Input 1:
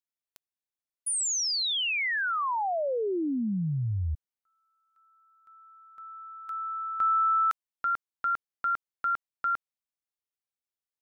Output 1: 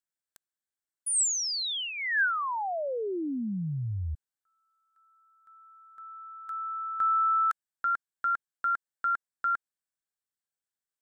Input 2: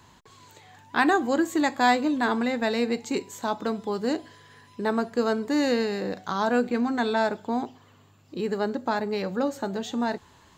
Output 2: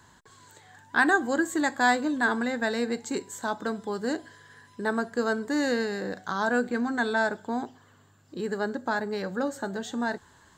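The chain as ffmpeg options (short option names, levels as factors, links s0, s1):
-af "equalizer=f=1600:t=o:w=0.33:g=9,equalizer=f=2500:t=o:w=0.33:g=-7,equalizer=f=8000:t=o:w=0.33:g=8,volume=0.708"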